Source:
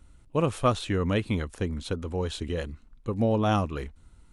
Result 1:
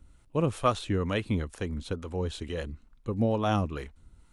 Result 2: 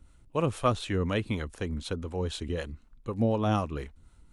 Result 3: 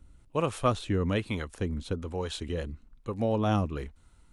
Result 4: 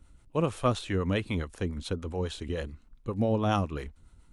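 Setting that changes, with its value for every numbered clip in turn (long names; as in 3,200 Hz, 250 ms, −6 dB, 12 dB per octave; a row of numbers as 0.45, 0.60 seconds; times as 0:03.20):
two-band tremolo in antiphase, speed: 2.2, 4, 1.1, 7.2 Hertz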